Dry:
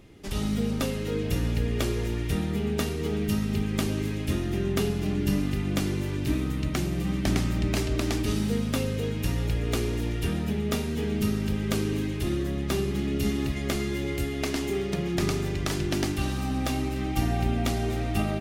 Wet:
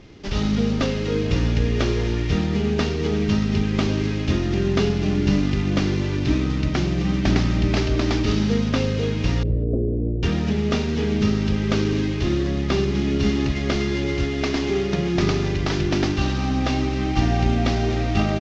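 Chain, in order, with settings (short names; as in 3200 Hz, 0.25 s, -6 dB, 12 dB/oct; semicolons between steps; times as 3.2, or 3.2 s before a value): CVSD 32 kbps; 9.43–10.23 Chebyshev low-pass 570 Hz, order 4; speakerphone echo 0.21 s, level -28 dB; gain +6.5 dB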